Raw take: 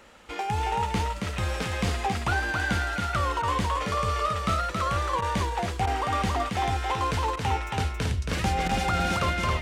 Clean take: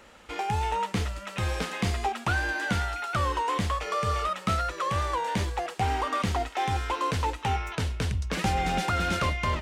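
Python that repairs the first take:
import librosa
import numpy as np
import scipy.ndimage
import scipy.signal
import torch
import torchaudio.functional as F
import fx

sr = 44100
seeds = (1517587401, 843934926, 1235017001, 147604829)

y = fx.fix_declip(x, sr, threshold_db=-17.0)
y = fx.fix_interpolate(y, sr, at_s=(3.42, 5.21, 5.86, 7.36, 8.68), length_ms=10.0)
y = fx.fix_echo_inverse(y, sr, delay_ms=274, level_db=-4.0)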